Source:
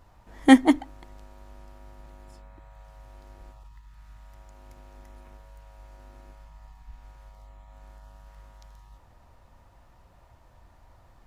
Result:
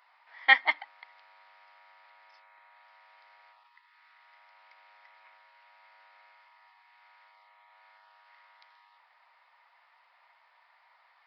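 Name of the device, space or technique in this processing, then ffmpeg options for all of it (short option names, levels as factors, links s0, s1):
musical greeting card: -af "aresample=11025,aresample=44100,highpass=f=880:w=0.5412,highpass=f=880:w=1.3066,equalizer=f=2100:t=o:w=0.35:g=10"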